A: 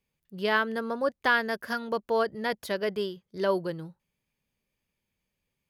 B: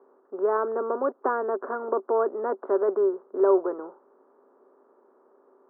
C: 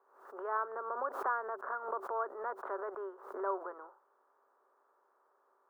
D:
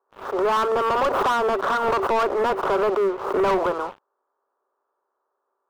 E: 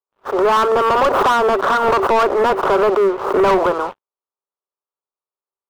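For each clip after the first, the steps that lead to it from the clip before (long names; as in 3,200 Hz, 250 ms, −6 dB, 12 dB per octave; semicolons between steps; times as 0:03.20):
compressor on every frequency bin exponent 0.6; Chebyshev band-pass filter 260–1,300 Hz, order 4; parametric band 390 Hz +10 dB 0.2 octaves
high-pass filter 1,100 Hz 12 dB per octave; background raised ahead of every attack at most 84 dB per second; level −2.5 dB
leveller curve on the samples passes 5; high-shelf EQ 2,000 Hz −9.5 dB; level +7 dB
noise gate −32 dBFS, range −29 dB; level +6.5 dB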